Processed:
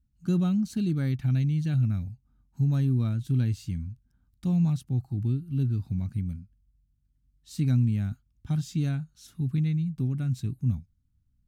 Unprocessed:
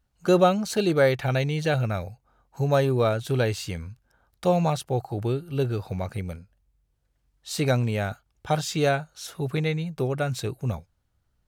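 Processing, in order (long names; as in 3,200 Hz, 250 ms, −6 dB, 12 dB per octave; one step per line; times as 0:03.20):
drawn EQ curve 260 Hz 0 dB, 490 Hz −30 dB, 1,100 Hz −21 dB, 6,500 Hz −14 dB
level +2 dB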